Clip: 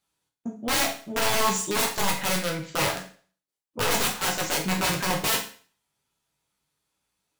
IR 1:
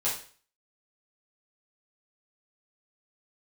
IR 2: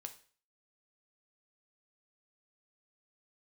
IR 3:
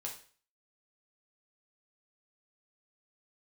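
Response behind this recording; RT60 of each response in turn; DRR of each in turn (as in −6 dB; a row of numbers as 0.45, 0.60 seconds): 3; 0.45, 0.45, 0.45 seconds; −9.5, 6.5, −1.5 decibels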